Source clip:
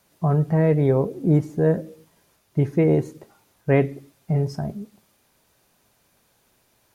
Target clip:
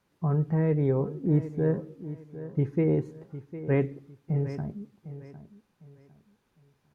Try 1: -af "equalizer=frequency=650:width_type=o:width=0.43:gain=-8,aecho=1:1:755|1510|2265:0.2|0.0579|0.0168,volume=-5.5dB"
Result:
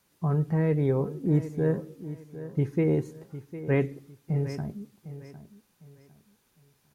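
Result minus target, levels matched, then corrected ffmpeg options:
2,000 Hz band +3.0 dB
-af "lowpass=frequency=1900:poles=1,equalizer=frequency=650:width_type=o:width=0.43:gain=-8,aecho=1:1:755|1510|2265:0.2|0.0579|0.0168,volume=-5.5dB"

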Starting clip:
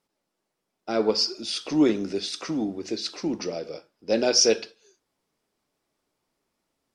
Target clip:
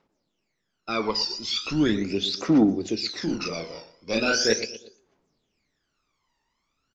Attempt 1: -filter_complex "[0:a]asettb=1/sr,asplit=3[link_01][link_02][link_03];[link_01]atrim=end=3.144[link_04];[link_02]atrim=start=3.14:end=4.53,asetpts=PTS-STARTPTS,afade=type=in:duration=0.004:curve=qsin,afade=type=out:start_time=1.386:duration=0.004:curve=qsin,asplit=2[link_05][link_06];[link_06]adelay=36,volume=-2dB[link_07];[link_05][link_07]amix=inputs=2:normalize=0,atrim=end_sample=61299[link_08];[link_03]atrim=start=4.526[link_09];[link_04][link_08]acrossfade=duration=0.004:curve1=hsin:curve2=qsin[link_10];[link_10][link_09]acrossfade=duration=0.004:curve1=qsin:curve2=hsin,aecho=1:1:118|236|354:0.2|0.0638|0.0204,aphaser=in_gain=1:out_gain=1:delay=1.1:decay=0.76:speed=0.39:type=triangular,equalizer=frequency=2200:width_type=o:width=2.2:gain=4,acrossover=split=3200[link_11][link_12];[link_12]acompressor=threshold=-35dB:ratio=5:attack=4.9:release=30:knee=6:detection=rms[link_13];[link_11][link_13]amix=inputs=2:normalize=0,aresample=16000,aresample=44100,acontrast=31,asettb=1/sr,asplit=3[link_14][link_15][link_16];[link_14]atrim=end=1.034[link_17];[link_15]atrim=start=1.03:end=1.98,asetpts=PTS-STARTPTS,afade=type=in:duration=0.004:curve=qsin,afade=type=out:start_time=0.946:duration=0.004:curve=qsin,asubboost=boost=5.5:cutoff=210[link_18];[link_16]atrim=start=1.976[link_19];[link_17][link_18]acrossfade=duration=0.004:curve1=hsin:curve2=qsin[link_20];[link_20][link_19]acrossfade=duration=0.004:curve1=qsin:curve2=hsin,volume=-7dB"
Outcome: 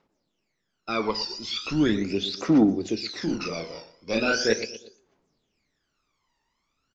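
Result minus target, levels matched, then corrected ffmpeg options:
downward compressor: peak gain reduction +7.5 dB
-filter_complex "[0:a]asettb=1/sr,asplit=3[link_01][link_02][link_03];[link_01]atrim=end=3.144[link_04];[link_02]atrim=start=3.14:end=4.53,asetpts=PTS-STARTPTS,afade=type=in:duration=0.004:curve=qsin,afade=type=out:start_time=1.386:duration=0.004:curve=qsin,asplit=2[link_05][link_06];[link_06]adelay=36,volume=-2dB[link_07];[link_05][link_07]amix=inputs=2:normalize=0,atrim=end_sample=61299[link_08];[link_03]atrim=start=4.526[link_09];[link_04][link_08]acrossfade=duration=0.004:curve1=hsin:curve2=qsin[link_10];[link_10][link_09]acrossfade=duration=0.004:curve1=qsin:curve2=hsin,aecho=1:1:118|236|354:0.2|0.0638|0.0204,aphaser=in_gain=1:out_gain=1:delay=1.1:decay=0.76:speed=0.39:type=triangular,equalizer=frequency=2200:width_type=o:width=2.2:gain=4,acrossover=split=3200[link_11][link_12];[link_12]acompressor=threshold=-25.5dB:ratio=5:attack=4.9:release=30:knee=6:detection=rms[link_13];[link_11][link_13]amix=inputs=2:normalize=0,aresample=16000,aresample=44100,acontrast=31,asettb=1/sr,asplit=3[link_14][link_15][link_16];[link_14]atrim=end=1.034[link_17];[link_15]atrim=start=1.03:end=1.98,asetpts=PTS-STARTPTS,afade=type=in:duration=0.004:curve=qsin,afade=type=out:start_time=0.946:duration=0.004:curve=qsin,asubboost=boost=5.5:cutoff=210[link_18];[link_16]atrim=start=1.976[link_19];[link_17][link_18]acrossfade=duration=0.004:curve1=hsin:curve2=qsin[link_20];[link_20][link_19]acrossfade=duration=0.004:curve1=qsin:curve2=hsin,volume=-7dB"

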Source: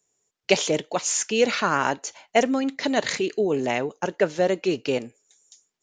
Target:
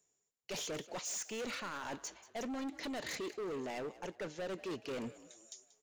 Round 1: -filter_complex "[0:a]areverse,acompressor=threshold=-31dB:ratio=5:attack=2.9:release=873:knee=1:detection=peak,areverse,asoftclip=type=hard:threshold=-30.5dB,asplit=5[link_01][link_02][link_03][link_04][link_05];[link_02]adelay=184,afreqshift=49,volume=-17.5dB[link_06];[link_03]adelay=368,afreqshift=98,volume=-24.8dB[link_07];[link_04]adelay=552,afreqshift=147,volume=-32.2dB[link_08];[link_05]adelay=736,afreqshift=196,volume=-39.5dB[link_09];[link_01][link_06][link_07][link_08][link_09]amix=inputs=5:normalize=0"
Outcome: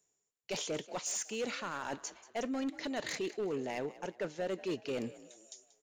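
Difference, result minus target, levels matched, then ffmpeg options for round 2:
hard clipping: distortion −8 dB
-filter_complex "[0:a]areverse,acompressor=threshold=-31dB:ratio=5:attack=2.9:release=873:knee=1:detection=peak,areverse,asoftclip=type=hard:threshold=-37.5dB,asplit=5[link_01][link_02][link_03][link_04][link_05];[link_02]adelay=184,afreqshift=49,volume=-17.5dB[link_06];[link_03]adelay=368,afreqshift=98,volume=-24.8dB[link_07];[link_04]adelay=552,afreqshift=147,volume=-32.2dB[link_08];[link_05]adelay=736,afreqshift=196,volume=-39.5dB[link_09];[link_01][link_06][link_07][link_08][link_09]amix=inputs=5:normalize=0"

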